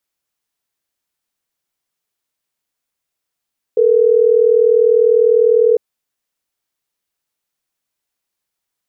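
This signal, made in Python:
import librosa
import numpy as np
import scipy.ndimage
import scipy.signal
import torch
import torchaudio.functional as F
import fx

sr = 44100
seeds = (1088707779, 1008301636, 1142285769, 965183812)

y = fx.call_progress(sr, length_s=3.12, kind='ringback tone', level_db=-11.0)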